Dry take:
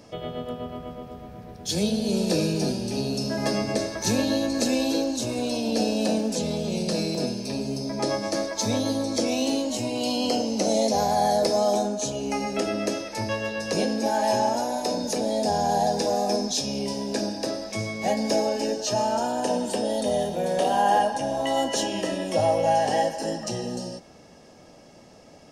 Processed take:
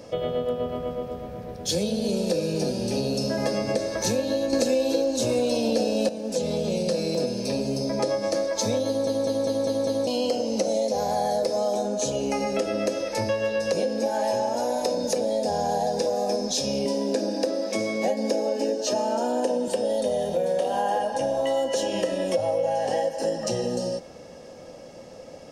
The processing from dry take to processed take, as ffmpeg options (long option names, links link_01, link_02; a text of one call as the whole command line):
ffmpeg -i in.wav -filter_complex "[0:a]asettb=1/sr,asplit=3[link_01][link_02][link_03];[link_01]atrim=end=16.854[link_04];[link_02]atrim=start=16.85:end=19.68,asetpts=PTS-STARTPTS,afade=type=in:duration=0.004:curve=qsin,afade=type=out:start_time=2.826:duration=0.004:curve=qsin,highpass=frequency=260:width_type=q:width=2[link_05];[link_03]atrim=start=19.676[link_06];[link_04][link_05]acrossfade=duration=0.004:curve1=hsin:curve2=qsin[link_07];[link_07][link_06]acrossfade=duration=0.004:curve1=qsin:curve2=hsin,asplit=9[link_08][link_09][link_10][link_11][link_12][link_13][link_14][link_15][link_16];[link_08]atrim=end=4.532[link_17];[link_09]atrim=start=4.528:end=6.092,asetpts=PTS-STARTPTS,volume=11.5dB[link_18];[link_10]atrim=start=6.088:end=9.072[link_19];[link_11]atrim=start=8.868:end=9.072[link_20];[link_12]atrim=start=8.868:end=9.072[link_21];[link_13]atrim=start=8.868:end=9.072[link_22];[link_14]atrim=start=8.868:end=9.072[link_23];[link_15]atrim=start=8.868:end=9.072[link_24];[link_16]atrim=start=10.068[link_25];[link_17][link_18]acrossfade=duration=0.004:curve1=hsin:curve2=hsin[link_26];[link_26][link_19]acrossfade=duration=0.004:curve1=hsin:curve2=hsin[link_27];[link_27][link_20]acrossfade=duration=0.004:curve1=hsin:curve2=hsin[link_28];[link_28][link_21]acrossfade=duration=0.004:curve1=hsin:curve2=hsin[link_29];[link_29][link_22]acrossfade=duration=0.004:curve1=hsin:curve2=hsin[link_30];[link_30][link_23]acrossfade=duration=0.004:curve1=hsin:curve2=hsin[link_31];[link_31][link_24]acrossfade=duration=0.004:curve1=hsin:curve2=hsin[link_32];[link_32][link_25]acrossfade=duration=0.004:curve1=hsin:curve2=hsin,equalizer=frequency=520:width_type=o:width=0.24:gain=13,acompressor=threshold=-25dB:ratio=6,volume=3dB" out.wav